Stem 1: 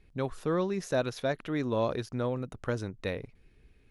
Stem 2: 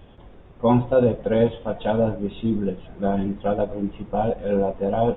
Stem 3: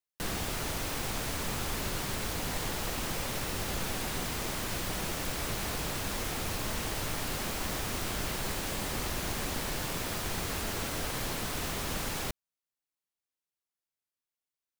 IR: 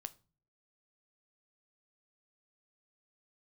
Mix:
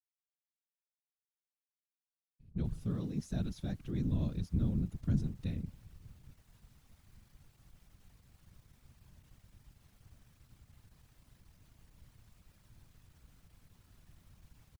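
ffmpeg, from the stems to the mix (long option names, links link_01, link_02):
-filter_complex "[0:a]equalizer=frequency=125:width_type=o:width=1:gain=6,equalizer=frequency=250:width_type=o:width=1:gain=5,equalizer=frequency=500:width_type=o:width=1:gain=-9,equalizer=frequency=1000:width_type=o:width=1:gain=-11,equalizer=frequency=2000:width_type=o:width=1:gain=-8,adelay=2400,volume=-3.5dB[link_01];[2:a]alimiter=level_in=7.5dB:limit=-24dB:level=0:latency=1,volume=-7.5dB,aeval=exprs='(tanh(200*val(0)+0.65)-tanh(0.65))/200':channel_layout=same,adelay=2450,volume=-15.5dB[link_02];[link_01][link_02]amix=inputs=2:normalize=0,asubboost=boost=5.5:cutoff=140,afftfilt=real='hypot(re,im)*cos(2*PI*random(0))':imag='hypot(re,im)*sin(2*PI*random(1))':win_size=512:overlap=0.75"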